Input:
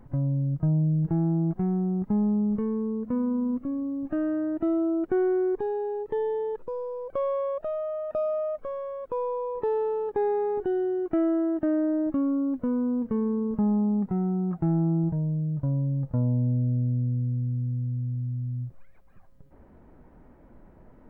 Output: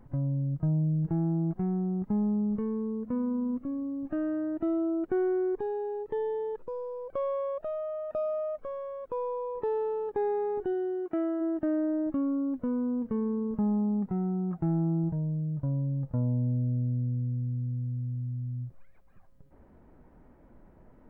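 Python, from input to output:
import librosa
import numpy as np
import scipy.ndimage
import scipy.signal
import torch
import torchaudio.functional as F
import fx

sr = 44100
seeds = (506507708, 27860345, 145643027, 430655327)

y = fx.highpass(x, sr, hz=fx.line((10.73, 160.0), (11.4, 360.0)), slope=6, at=(10.73, 11.4), fade=0.02)
y = y * 10.0 ** (-3.5 / 20.0)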